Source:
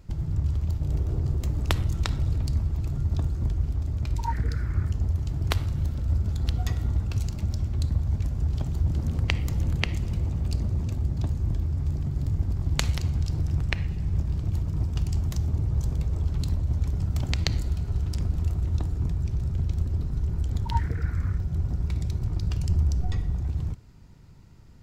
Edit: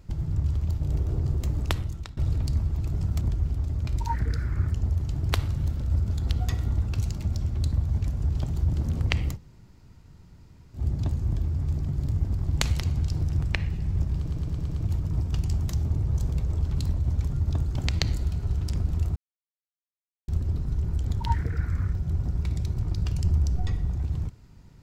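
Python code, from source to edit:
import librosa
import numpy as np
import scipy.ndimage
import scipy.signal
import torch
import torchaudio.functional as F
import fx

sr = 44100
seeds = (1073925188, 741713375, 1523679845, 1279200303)

y = fx.edit(x, sr, fx.fade_out_to(start_s=1.57, length_s=0.6, floor_db=-21.5),
    fx.swap(start_s=2.94, length_s=0.45, other_s=16.93, other_length_s=0.27),
    fx.room_tone_fill(start_s=9.52, length_s=1.44, crossfade_s=0.1),
    fx.stutter(start_s=14.35, slice_s=0.11, count=6),
    fx.silence(start_s=18.61, length_s=1.12), tone=tone)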